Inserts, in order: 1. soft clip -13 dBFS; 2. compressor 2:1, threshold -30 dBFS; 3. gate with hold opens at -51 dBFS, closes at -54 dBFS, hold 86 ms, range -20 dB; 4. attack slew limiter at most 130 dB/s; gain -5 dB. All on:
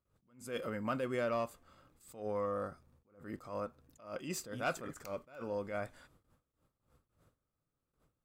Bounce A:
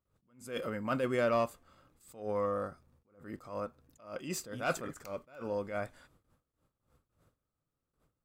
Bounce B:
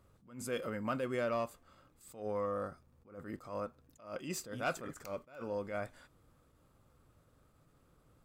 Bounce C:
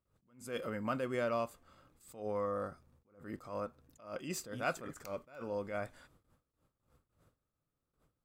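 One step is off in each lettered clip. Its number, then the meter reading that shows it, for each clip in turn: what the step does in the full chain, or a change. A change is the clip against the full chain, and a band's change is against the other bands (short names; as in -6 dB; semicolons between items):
2, momentary loudness spread change +4 LU; 3, momentary loudness spread change +4 LU; 1, distortion -19 dB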